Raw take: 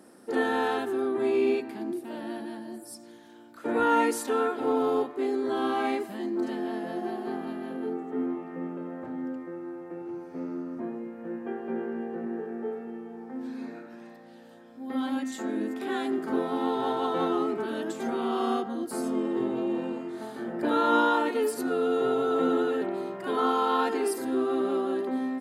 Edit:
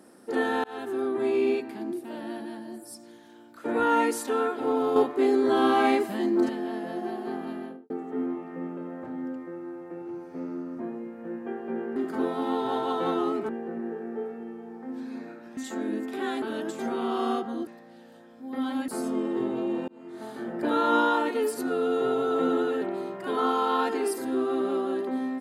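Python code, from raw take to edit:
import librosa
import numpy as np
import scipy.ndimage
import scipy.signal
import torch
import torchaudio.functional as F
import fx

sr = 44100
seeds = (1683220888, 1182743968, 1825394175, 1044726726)

y = fx.studio_fade_out(x, sr, start_s=7.58, length_s=0.32)
y = fx.edit(y, sr, fx.fade_in_span(start_s=0.64, length_s=0.44, curve='qsin'),
    fx.clip_gain(start_s=4.96, length_s=1.53, db=6.0),
    fx.move(start_s=14.04, length_s=1.21, to_s=18.88),
    fx.move(start_s=16.1, length_s=1.53, to_s=11.96),
    fx.fade_in_span(start_s=19.88, length_s=0.41), tone=tone)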